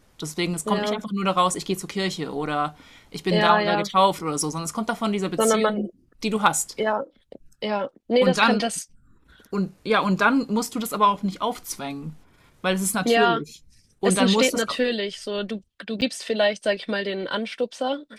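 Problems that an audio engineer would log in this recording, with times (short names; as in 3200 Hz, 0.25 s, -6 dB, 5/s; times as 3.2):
16.01–16.02 gap 8.6 ms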